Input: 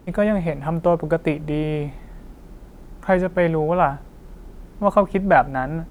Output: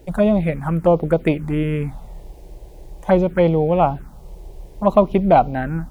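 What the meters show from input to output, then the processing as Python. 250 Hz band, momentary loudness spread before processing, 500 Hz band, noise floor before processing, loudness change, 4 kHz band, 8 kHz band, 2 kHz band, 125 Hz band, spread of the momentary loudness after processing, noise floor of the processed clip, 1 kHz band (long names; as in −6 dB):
+4.0 dB, 9 LU, +2.5 dB, −44 dBFS, +2.5 dB, +2.5 dB, can't be measured, −4.5 dB, +4.0 dB, 9 LU, −41 dBFS, +1.0 dB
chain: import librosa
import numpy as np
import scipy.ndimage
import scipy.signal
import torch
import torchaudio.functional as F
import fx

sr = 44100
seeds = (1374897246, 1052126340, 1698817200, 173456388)

y = fx.env_phaser(x, sr, low_hz=190.0, high_hz=1700.0, full_db=-15.0)
y = F.gain(torch.from_numpy(y), 4.5).numpy()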